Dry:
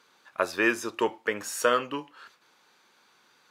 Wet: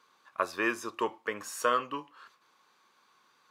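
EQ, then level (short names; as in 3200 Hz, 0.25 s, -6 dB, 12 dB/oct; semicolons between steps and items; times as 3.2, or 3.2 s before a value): bell 1100 Hz +11.5 dB 0.22 oct; -6.0 dB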